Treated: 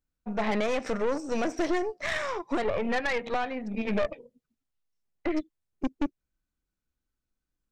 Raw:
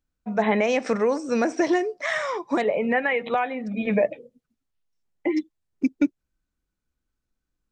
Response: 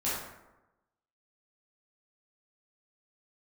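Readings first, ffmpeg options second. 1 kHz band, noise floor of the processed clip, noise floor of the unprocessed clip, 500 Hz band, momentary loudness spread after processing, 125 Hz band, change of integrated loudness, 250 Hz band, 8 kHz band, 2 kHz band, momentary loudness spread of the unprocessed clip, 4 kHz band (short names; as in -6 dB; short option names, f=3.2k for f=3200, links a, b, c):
-5.0 dB, under -85 dBFS, -82 dBFS, -6.0 dB, 7 LU, -4.5 dB, -6.0 dB, -6.0 dB, n/a, -5.5 dB, 6 LU, -1.5 dB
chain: -af "aeval=exprs='(tanh(14.1*val(0)+0.75)-tanh(0.75))/14.1':c=same"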